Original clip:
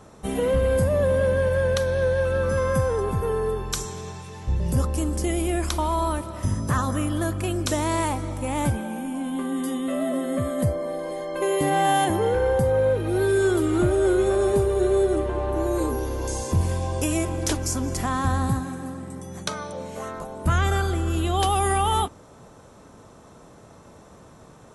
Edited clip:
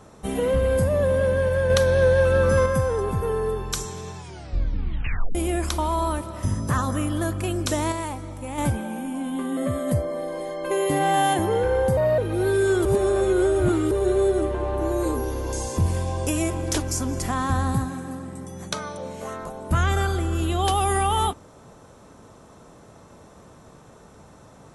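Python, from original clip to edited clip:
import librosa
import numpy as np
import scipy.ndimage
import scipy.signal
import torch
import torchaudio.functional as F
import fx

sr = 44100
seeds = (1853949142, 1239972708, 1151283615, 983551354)

y = fx.edit(x, sr, fx.clip_gain(start_s=1.7, length_s=0.96, db=4.5),
    fx.tape_stop(start_s=4.17, length_s=1.18),
    fx.clip_gain(start_s=7.92, length_s=0.66, db=-5.5),
    fx.cut(start_s=9.57, length_s=0.71),
    fx.speed_span(start_s=12.68, length_s=0.25, speed=1.18),
    fx.reverse_span(start_s=13.6, length_s=1.06), tone=tone)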